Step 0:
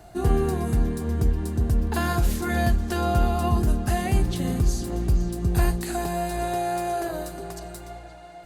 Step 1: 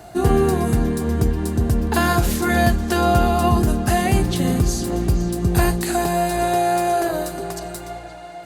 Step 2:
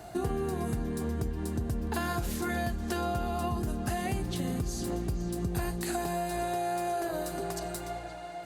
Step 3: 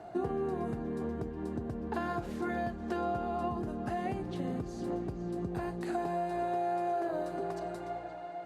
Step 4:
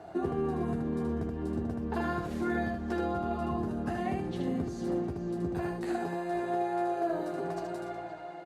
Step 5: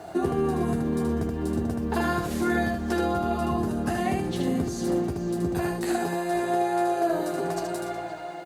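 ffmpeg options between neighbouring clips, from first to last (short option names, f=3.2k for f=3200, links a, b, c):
-af "highpass=f=110:p=1,volume=8dB"
-af "acompressor=threshold=-25dB:ratio=4,volume=-5dB"
-af "bandpass=f=510:t=q:w=0.5:csg=0"
-af "aecho=1:1:12|77:0.596|0.668"
-af "crystalizer=i=2.5:c=0,volume=6dB"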